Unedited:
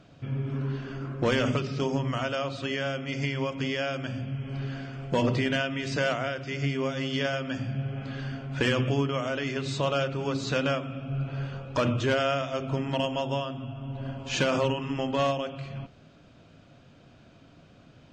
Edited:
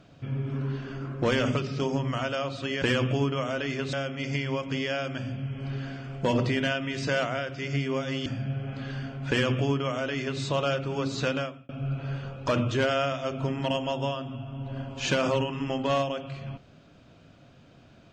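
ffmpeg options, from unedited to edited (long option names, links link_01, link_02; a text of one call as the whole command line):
ffmpeg -i in.wav -filter_complex "[0:a]asplit=5[link_01][link_02][link_03][link_04][link_05];[link_01]atrim=end=2.822[link_06];[link_02]atrim=start=8.588:end=9.702[link_07];[link_03]atrim=start=2.818:end=7.152[link_08];[link_04]atrim=start=7.548:end=10.98,asetpts=PTS-STARTPTS,afade=type=out:start_time=3.002:duration=0.43[link_09];[link_05]atrim=start=10.98,asetpts=PTS-STARTPTS,afade=type=in:duration=0.004:curve=hsin[link_10];[link_06][link_07]acrossfade=duration=0.004:curve1=hsin:curve2=hsin[link_11];[link_11][link_08]acrossfade=duration=0.004:curve1=hsin:curve2=hsin[link_12];[link_09][link_10]concat=n=2:v=0:a=1[link_13];[link_12][link_13]acrossfade=duration=0.004:curve1=hsin:curve2=hsin" out.wav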